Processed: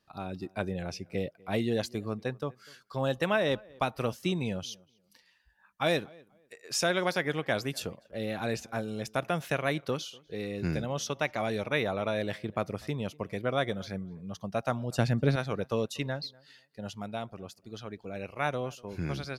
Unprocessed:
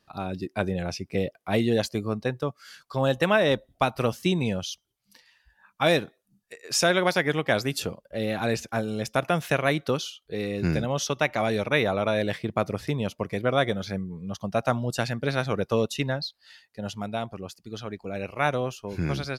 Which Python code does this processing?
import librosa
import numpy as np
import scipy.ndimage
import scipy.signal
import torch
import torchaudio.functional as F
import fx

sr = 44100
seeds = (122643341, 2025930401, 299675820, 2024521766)

y = fx.low_shelf(x, sr, hz=500.0, db=11.0, at=(14.92, 15.36))
y = fx.echo_tape(y, sr, ms=243, feedback_pct=24, wet_db=-23.5, lp_hz=2000.0, drive_db=11.0, wow_cents=37)
y = y * librosa.db_to_amplitude(-6.0)